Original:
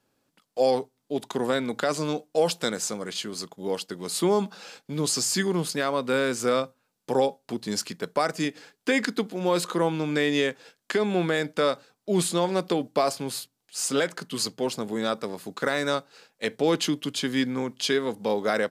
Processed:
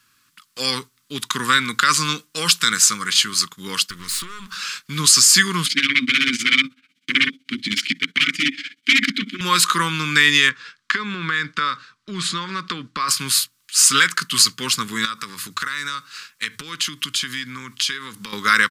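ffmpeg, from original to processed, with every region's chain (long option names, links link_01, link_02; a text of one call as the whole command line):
ffmpeg -i in.wav -filter_complex "[0:a]asettb=1/sr,asplit=3[link_01][link_02][link_03];[link_01]atrim=end=3.844[link_04];[link_02]atrim=start=3.84:end=4.55,asetpts=PTS-STARTPTS,afade=type=in:duration=0.004:curve=qsin,afade=type=out:start_time=0.706:duration=0.004:curve=qsin,acompressor=threshold=-34dB:ratio=4:attack=3.2:release=140:knee=1:detection=peak,aeval=exprs='clip(val(0),-1,0.00422)':channel_layout=same[link_05];[link_03]atrim=start=4.546[link_06];[link_04][link_05]acrossfade=duration=0.004:curve1=hsin:curve2=qsin[link_07];[link_07][link_06]acrossfade=duration=0.004:curve1=qsin:curve2=hsin,asettb=1/sr,asplit=3[link_08][link_09][link_10];[link_08]atrim=end=5.664[link_11];[link_09]atrim=start=5.66:end=9.41,asetpts=PTS-STARTPTS,afade=type=in:duration=0.004:curve=qsin,afade=type=out:start_time=3.746:duration=0.004:curve=qsin,tremolo=f=16:d=0.86,aeval=exprs='0.266*sin(PI/2*7.08*val(0)/0.266)':channel_layout=same,asplit=3[link_12][link_13][link_14];[link_12]bandpass=frequency=270:width_type=q:width=8,volume=0dB[link_15];[link_13]bandpass=frequency=2290:width_type=q:width=8,volume=-6dB[link_16];[link_14]bandpass=frequency=3010:width_type=q:width=8,volume=-9dB[link_17];[link_15][link_16][link_17]amix=inputs=3:normalize=0[link_18];[link_10]atrim=start=9.406[link_19];[link_11][link_18]acrossfade=duration=0.004:curve1=hsin:curve2=qsin[link_20];[link_20][link_19]acrossfade=duration=0.004:curve1=qsin:curve2=hsin,asettb=1/sr,asplit=3[link_21][link_22][link_23];[link_21]atrim=end=10.494[link_24];[link_22]atrim=start=10.49:end=13.09,asetpts=PTS-STARTPTS,afade=type=in:duration=0.004:curve=qsin,afade=type=out:start_time=2.596:duration=0.004:curve=qsin,lowpass=3800,acompressor=threshold=-27dB:ratio=3:attack=3.2:release=140:knee=1:detection=peak,equalizer=frequency=2700:width_type=o:width=0.8:gain=-4[link_25];[link_23]atrim=start=13.086[link_26];[link_24][link_25]acrossfade=duration=0.004:curve1=hsin:curve2=qsin[link_27];[link_27][link_26]acrossfade=duration=0.004:curve1=qsin:curve2=hsin,asettb=1/sr,asplit=3[link_28][link_29][link_30];[link_28]atrim=end=15.054[link_31];[link_29]atrim=start=15.05:end=18.33,asetpts=PTS-STARTPTS,afade=type=in:duration=0.004:curve=qsin,afade=type=out:start_time=3.276:duration=0.004:curve=qsin,equalizer=frequency=100:width_type=o:width=0.23:gain=5,bandreject=frequency=50:width_type=h:width=6,bandreject=frequency=100:width_type=h:width=6,acompressor=threshold=-34dB:ratio=6:attack=3.2:release=140:knee=1:detection=peak[link_32];[link_30]atrim=start=18.326[link_33];[link_31][link_32]acrossfade=duration=0.004:curve1=hsin:curve2=qsin[link_34];[link_34][link_33]acrossfade=duration=0.004:curve1=qsin:curve2=hsin,firequalizer=gain_entry='entry(120,0);entry(700,-27);entry(1100,10)':delay=0.05:min_phase=1,alimiter=level_in=7.5dB:limit=-1dB:release=50:level=0:latency=1,volume=-1dB" out.wav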